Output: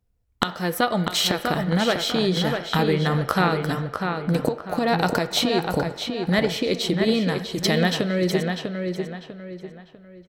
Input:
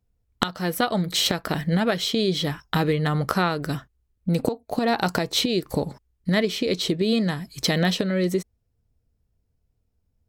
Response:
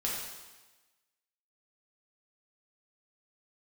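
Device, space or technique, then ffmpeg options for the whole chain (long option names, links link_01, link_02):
filtered reverb send: -filter_complex "[0:a]asplit=2[link_01][link_02];[link_02]highpass=400,lowpass=3100[link_03];[1:a]atrim=start_sample=2205[link_04];[link_03][link_04]afir=irnorm=-1:irlink=0,volume=-13.5dB[link_05];[link_01][link_05]amix=inputs=2:normalize=0,asplit=2[link_06][link_07];[link_07]adelay=647,lowpass=frequency=3700:poles=1,volume=-5dB,asplit=2[link_08][link_09];[link_09]adelay=647,lowpass=frequency=3700:poles=1,volume=0.36,asplit=2[link_10][link_11];[link_11]adelay=647,lowpass=frequency=3700:poles=1,volume=0.36,asplit=2[link_12][link_13];[link_13]adelay=647,lowpass=frequency=3700:poles=1,volume=0.36[link_14];[link_06][link_08][link_10][link_12][link_14]amix=inputs=5:normalize=0"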